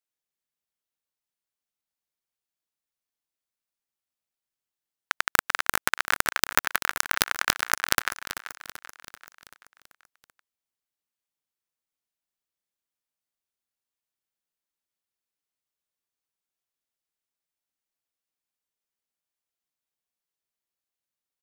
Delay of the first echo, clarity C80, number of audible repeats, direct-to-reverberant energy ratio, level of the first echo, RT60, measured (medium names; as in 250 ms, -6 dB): 386 ms, no reverb, 5, no reverb, -12.5 dB, no reverb